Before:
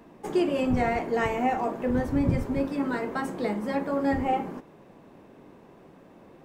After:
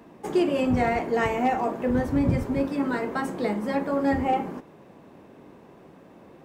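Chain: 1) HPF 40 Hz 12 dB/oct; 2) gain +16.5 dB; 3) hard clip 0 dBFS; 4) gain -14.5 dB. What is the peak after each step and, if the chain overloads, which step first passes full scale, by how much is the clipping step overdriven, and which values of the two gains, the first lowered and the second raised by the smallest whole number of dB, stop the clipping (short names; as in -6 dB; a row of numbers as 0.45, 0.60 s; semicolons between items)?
-12.0, +4.5, 0.0, -14.5 dBFS; step 2, 4.5 dB; step 2 +11.5 dB, step 4 -9.5 dB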